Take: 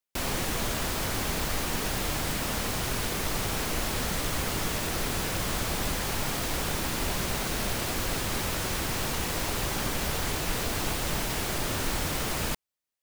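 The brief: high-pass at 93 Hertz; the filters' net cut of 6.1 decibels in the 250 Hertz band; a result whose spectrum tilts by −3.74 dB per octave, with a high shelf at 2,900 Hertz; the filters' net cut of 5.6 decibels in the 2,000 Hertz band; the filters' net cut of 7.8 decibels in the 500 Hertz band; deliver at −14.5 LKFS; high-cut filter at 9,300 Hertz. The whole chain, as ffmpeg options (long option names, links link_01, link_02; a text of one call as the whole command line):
ffmpeg -i in.wav -af "highpass=93,lowpass=9300,equalizer=frequency=250:width_type=o:gain=-6,equalizer=frequency=500:width_type=o:gain=-8,equalizer=frequency=2000:width_type=o:gain=-5.5,highshelf=frequency=2900:gain=-3,volume=20.5dB" out.wav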